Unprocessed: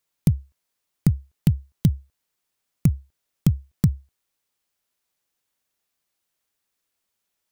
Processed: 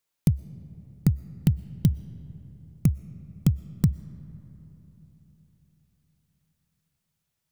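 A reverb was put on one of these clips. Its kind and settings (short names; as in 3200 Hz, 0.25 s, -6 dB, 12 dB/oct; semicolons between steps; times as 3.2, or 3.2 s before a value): digital reverb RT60 4.1 s, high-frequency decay 0.4×, pre-delay 80 ms, DRR 17 dB; gain -2.5 dB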